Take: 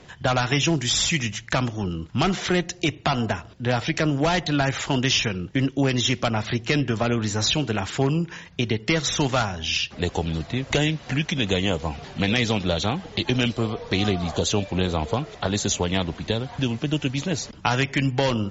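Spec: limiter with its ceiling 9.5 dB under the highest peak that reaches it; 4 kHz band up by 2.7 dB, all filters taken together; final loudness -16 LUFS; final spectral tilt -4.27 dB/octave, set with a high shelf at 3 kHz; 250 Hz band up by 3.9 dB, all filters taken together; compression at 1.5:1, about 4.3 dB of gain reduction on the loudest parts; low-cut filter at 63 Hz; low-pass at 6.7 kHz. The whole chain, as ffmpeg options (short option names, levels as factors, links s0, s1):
-af "highpass=63,lowpass=6700,equalizer=f=250:t=o:g=5,highshelf=f=3000:g=-3.5,equalizer=f=4000:t=o:g=6.5,acompressor=threshold=0.0447:ratio=1.5,volume=3.76,alimiter=limit=0.531:level=0:latency=1"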